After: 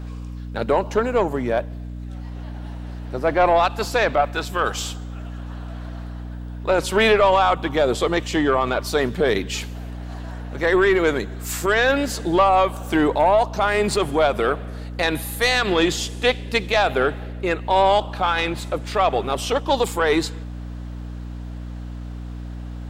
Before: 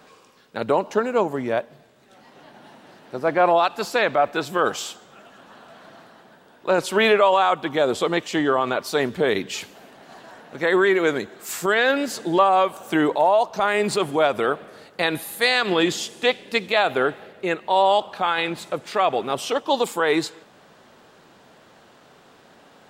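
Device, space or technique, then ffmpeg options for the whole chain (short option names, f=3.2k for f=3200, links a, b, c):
valve amplifier with mains hum: -filter_complex "[0:a]asettb=1/sr,asplit=3[a][b][c];[a]atrim=end=4.214[d];[b]atrim=start=4.21:end=4.77,asetpts=PTS-STARTPTS,afade=t=in:d=0.004:c=qsin,afade=t=out:st=0.556:d=0.004:c=qsin,lowshelf=f=480:g=-10[e];[c]atrim=start=4.766[f];[d][e]acrossfade=d=0.004:c1=hsin:c2=qsin[g];[g][f]acrossfade=d=0.004:c1=qsin:c2=hsin,aeval=exprs='(tanh(3.16*val(0)+0.2)-tanh(0.2))/3.16':c=same,aeval=exprs='val(0)+0.0224*(sin(2*PI*60*n/s)+sin(2*PI*2*60*n/s)/2+sin(2*PI*3*60*n/s)/3+sin(2*PI*4*60*n/s)/4+sin(2*PI*5*60*n/s)/5)':c=same,volume=2.5dB"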